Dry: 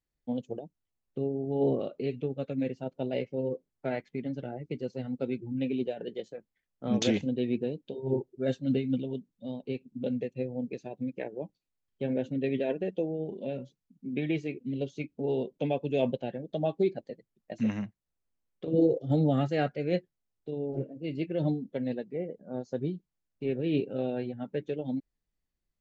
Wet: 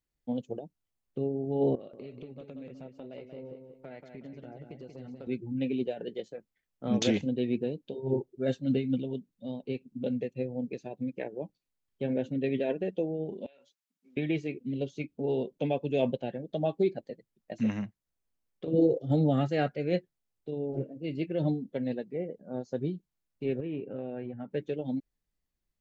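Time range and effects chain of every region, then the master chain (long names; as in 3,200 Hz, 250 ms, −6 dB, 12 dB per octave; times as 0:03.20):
0:01.75–0:05.27: downward compressor 4 to 1, threshold −43 dBFS + repeating echo 184 ms, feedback 36%, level −6.5 dB
0:13.46–0:14.17: high-pass filter 1,100 Hz + downward compressor 16 to 1, threshold −55 dBFS
0:23.60–0:24.51: low-pass filter 2,600 Hz 24 dB per octave + downward compressor 3 to 1, threshold −34 dBFS
whole clip: no processing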